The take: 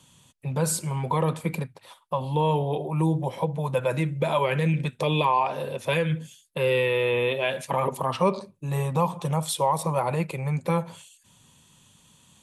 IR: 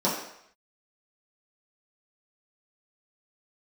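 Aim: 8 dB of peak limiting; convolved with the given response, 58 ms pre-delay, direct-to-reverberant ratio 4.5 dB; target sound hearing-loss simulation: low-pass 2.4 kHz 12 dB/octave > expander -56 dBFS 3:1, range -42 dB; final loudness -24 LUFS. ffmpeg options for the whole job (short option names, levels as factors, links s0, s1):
-filter_complex "[0:a]alimiter=limit=0.126:level=0:latency=1,asplit=2[s0][s1];[1:a]atrim=start_sample=2205,adelay=58[s2];[s1][s2]afir=irnorm=-1:irlink=0,volume=0.133[s3];[s0][s3]amix=inputs=2:normalize=0,lowpass=2400,agate=range=0.00794:threshold=0.00158:ratio=3,volume=1.41"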